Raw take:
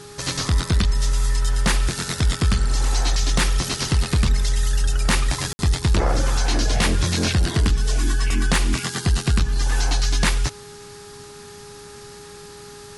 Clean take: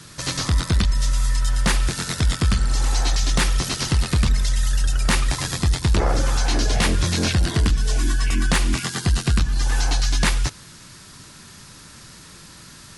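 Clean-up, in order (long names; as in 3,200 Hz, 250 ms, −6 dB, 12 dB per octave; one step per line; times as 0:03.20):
hum removal 411.4 Hz, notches 4
ambience match 0:05.53–0:05.59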